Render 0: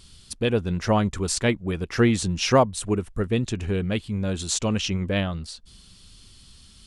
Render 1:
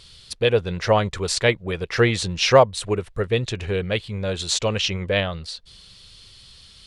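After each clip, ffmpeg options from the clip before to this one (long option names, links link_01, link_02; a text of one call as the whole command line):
ffmpeg -i in.wav -af "equalizer=frequency=125:width_type=o:width=1:gain=5,equalizer=frequency=250:width_type=o:width=1:gain=-7,equalizer=frequency=500:width_type=o:width=1:gain=10,equalizer=frequency=1000:width_type=o:width=1:gain=3,equalizer=frequency=2000:width_type=o:width=1:gain=7,equalizer=frequency=4000:width_type=o:width=1:gain=9,volume=-3dB" out.wav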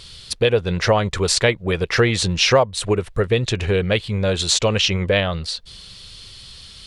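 ffmpeg -i in.wav -af "acompressor=threshold=-22dB:ratio=2.5,volume=7dB" out.wav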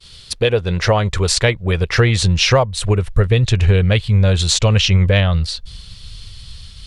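ffmpeg -i in.wav -af "aeval=exprs='0.794*(cos(1*acos(clip(val(0)/0.794,-1,1)))-cos(1*PI/2))+0.0141*(cos(4*acos(clip(val(0)/0.794,-1,1)))-cos(4*PI/2))+0.00794*(cos(6*acos(clip(val(0)/0.794,-1,1)))-cos(6*PI/2))':channel_layout=same,agate=range=-33dB:threshold=-37dB:ratio=3:detection=peak,asubboost=boost=5:cutoff=140,volume=1.5dB" out.wav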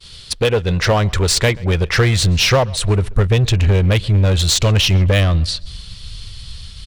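ffmpeg -i in.wav -filter_complex "[0:a]asplit=2[link_01][link_02];[link_02]aeval=exprs='0.168*(abs(mod(val(0)/0.168+3,4)-2)-1)':channel_layout=same,volume=-5.5dB[link_03];[link_01][link_03]amix=inputs=2:normalize=0,asplit=2[link_04][link_05];[link_05]adelay=132,lowpass=frequency=4700:poles=1,volume=-23.5dB,asplit=2[link_06][link_07];[link_07]adelay=132,lowpass=frequency=4700:poles=1,volume=0.41,asplit=2[link_08][link_09];[link_09]adelay=132,lowpass=frequency=4700:poles=1,volume=0.41[link_10];[link_04][link_06][link_08][link_10]amix=inputs=4:normalize=0,volume=-1dB" out.wav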